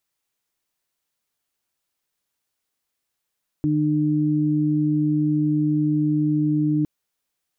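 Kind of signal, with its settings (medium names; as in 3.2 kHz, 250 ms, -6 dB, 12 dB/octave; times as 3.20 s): steady additive tone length 3.21 s, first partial 151 Hz, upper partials 3 dB, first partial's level -22 dB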